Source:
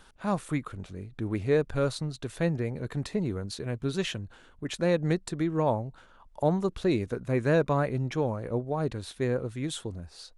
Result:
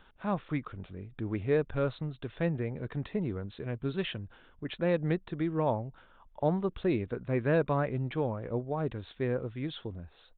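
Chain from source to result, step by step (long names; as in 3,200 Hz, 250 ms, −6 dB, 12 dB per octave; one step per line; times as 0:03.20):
downsampling to 8,000 Hz
level −3 dB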